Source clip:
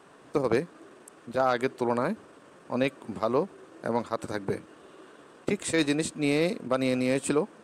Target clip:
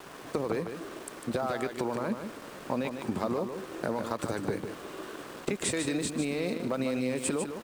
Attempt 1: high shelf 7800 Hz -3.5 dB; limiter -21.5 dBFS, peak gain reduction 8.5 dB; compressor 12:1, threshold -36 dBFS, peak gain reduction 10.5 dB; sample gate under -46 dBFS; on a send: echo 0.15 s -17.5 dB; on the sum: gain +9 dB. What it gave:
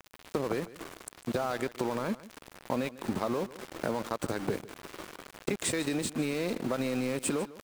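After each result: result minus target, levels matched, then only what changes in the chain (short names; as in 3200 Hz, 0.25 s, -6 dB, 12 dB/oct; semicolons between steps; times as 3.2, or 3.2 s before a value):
echo-to-direct -10 dB; sample gate: distortion +9 dB
change: echo 0.15 s -7.5 dB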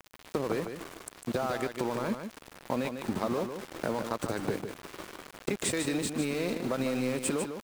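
sample gate: distortion +9 dB
change: sample gate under -54 dBFS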